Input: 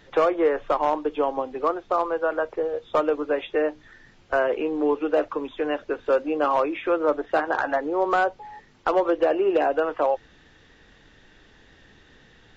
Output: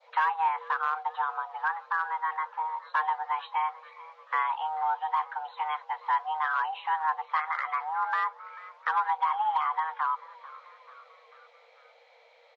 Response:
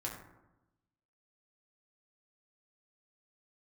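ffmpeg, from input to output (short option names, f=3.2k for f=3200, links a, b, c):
-filter_complex "[0:a]afreqshift=460,lowpass=4.1k,asplit=2[a][b];[b]asplit=4[c][d][e][f];[c]adelay=440,afreqshift=61,volume=-20.5dB[g];[d]adelay=880,afreqshift=122,volume=-25.5dB[h];[e]adelay=1320,afreqshift=183,volume=-30.6dB[i];[f]adelay=1760,afreqshift=244,volume=-35.6dB[j];[g][h][i][j]amix=inputs=4:normalize=0[k];[a][k]amix=inputs=2:normalize=0,adynamicequalizer=threshold=0.0178:dfrequency=2200:dqfactor=0.91:tfrequency=2200:tqfactor=0.91:attack=5:release=100:ratio=0.375:range=2:mode=cutabove:tftype=bell,volume=-5.5dB"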